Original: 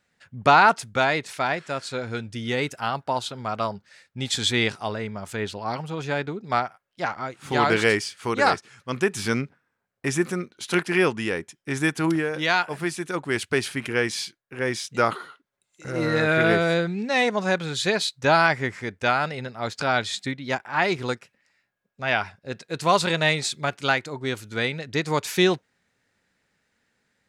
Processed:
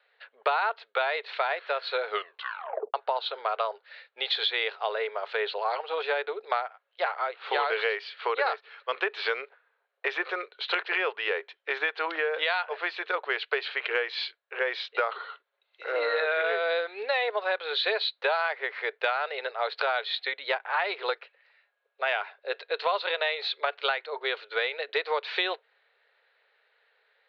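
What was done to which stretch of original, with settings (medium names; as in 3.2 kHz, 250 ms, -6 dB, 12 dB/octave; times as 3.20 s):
2.05 s: tape stop 0.89 s
whole clip: Chebyshev band-pass 430–4200 Hz, order 5; compression 6:1, threshold -30 dBFS; trim +5.5 dB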